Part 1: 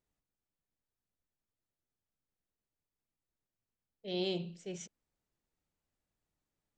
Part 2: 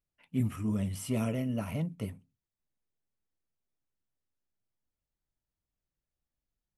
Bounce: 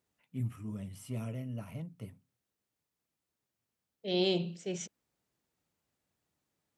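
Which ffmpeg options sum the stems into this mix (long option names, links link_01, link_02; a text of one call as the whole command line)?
ffmpeg -i stem1.wav -i stem2.wav -filter_complex "[0:a]acontrast=84,volume=-1.5dB[link_01];[1:a]equalizer=frequency=120:width_type=o:width=0.28:gain=9.5,volume=-10dB[link_02];[link_01][link_02]amix=inputs=2:normalize=0,highpass=88" out.wav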